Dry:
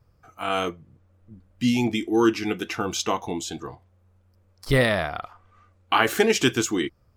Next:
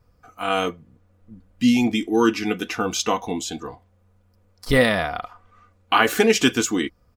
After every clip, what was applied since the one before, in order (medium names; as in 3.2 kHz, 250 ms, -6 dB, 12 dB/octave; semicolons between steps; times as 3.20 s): comb 4.1 ms, depth 42%; trim +2 dB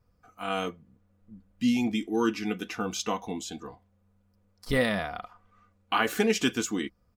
peaking EQ 200 Hz +7 dB 0.22 oct; trim -8.5 dB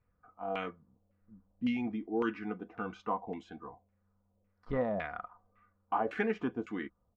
LFO low-pass saw down 1.8 Hz 580–2400 Hz; trim -8 dB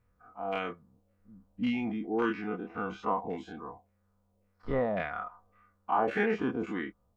every event in the spectrogram widened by 60 ms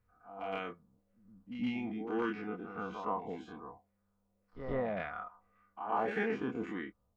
reverse echo 116 ms -8.5 dB; trim -5.5 dB